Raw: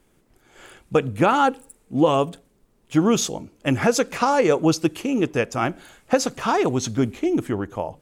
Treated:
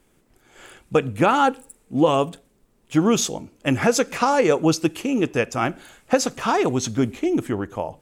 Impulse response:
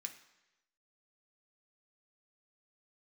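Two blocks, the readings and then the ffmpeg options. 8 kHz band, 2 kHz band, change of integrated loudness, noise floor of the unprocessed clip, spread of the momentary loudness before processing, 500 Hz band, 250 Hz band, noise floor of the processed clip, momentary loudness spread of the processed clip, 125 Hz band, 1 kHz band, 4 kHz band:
+1.5 dB, +1.0 dB, +0.5 dB, -62 dBFS, 9 LU, 0.0 dB, 0.0 dB, -62 dBFS, 9 LU, -0.5 dB, +0.5 dB, +1.0 dB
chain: -filter_complex "[0:a]asplit=2[s0][s1];[1:a]atrim=start_sample=2205,afade=t=out:st=0.18:d=0.01,atrim=end_sample=8379[s2];[s1][s2]afir=irnorm=-1:irlink=0,volume=0.266[s3];[s0][s3]amix=inputs=2:normalize=0"

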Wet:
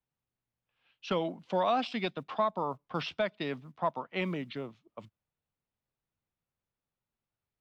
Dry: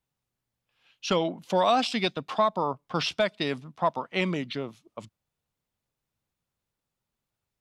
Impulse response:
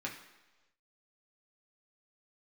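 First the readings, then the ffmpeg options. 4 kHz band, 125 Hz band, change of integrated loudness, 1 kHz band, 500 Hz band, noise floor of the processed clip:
-9.5 dB, -5.5 dB, -6.0 dB, -5.5 dB, -5.5 dB, under -85 dBFS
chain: -filter_complex "[0:a]lowpass=3200,acrossover=split=130|1300[s0][s1][s2];[s0]acrusher=bits=5:mode=log:mix=0:aa=0.000001[s3];[s3][s1][s2]amix=inputs=3:normalize=0,volume=0.531"

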